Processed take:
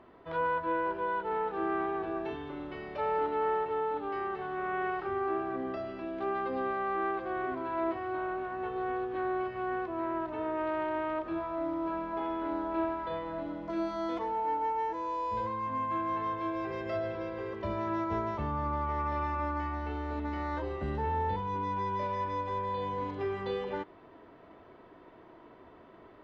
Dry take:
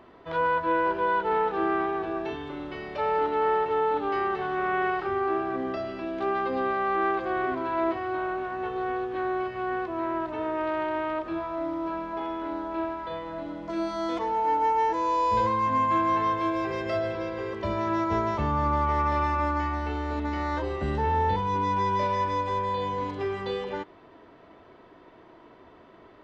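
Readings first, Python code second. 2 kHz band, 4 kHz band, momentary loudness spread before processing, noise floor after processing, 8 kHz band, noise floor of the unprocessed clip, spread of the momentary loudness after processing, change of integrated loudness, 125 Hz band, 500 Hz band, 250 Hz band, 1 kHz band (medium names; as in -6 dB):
-7.0 dB, -9.0 dB, 8 LU, -55 dBFS, no reading, -52 dBFS, 5 LU, -6.0 dB, -6.0 dB, -5.0 dB, -5.0 dB, -6.5 dB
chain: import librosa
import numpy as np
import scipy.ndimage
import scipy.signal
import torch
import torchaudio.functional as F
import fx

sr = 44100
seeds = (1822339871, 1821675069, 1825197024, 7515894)

y = fx.lowpass(x, sr, hz=2800.0, slope=6)
y = fx.rider(y, sr, range_db=10, speed_s=2.0)
y = F.gain(torch.from_numpy(y), -6.0).numpy()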